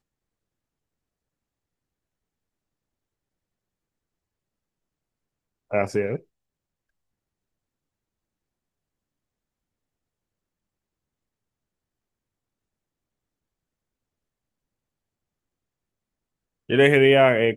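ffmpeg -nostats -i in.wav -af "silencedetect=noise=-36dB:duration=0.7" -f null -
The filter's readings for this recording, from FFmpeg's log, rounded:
silence_start: 0.00
silence_end: 5.71 | silence_duration: 5.71
silence_start: 6.17
silence_end: 16.69 | silence_duration: 10.53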